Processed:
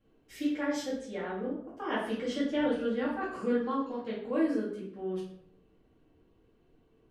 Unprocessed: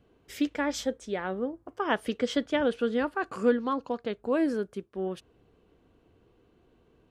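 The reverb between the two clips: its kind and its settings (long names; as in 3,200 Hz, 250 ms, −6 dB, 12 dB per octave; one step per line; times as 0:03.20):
rectangular room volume 110 cubic metres, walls mixed, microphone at 2.2 metres
level −13 dB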